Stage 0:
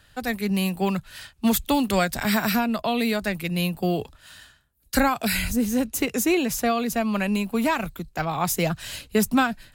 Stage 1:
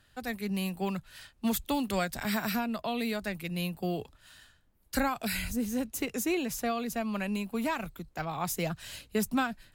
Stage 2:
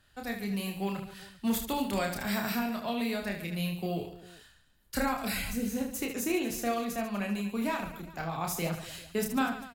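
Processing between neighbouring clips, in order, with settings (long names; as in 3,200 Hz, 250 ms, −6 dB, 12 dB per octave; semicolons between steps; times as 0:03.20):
background noise brown −60 dBFS; level −8.5 dB
reverse bouncing-ball delay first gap 30 ms, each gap 1.5×, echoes 5; level −2.5 dB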